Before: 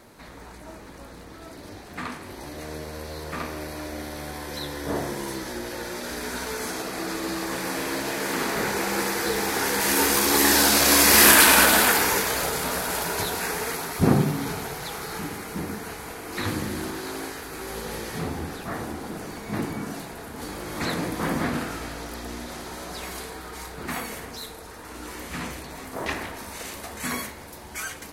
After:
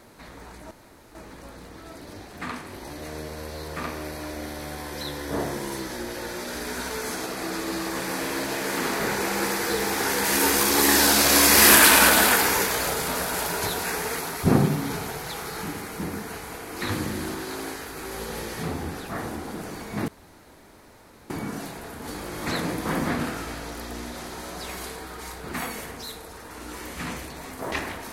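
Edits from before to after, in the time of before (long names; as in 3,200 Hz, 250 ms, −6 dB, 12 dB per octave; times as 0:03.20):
0:00.71: splice in room tone 0.44 s
0:19.64: splice in room tone 1.22 s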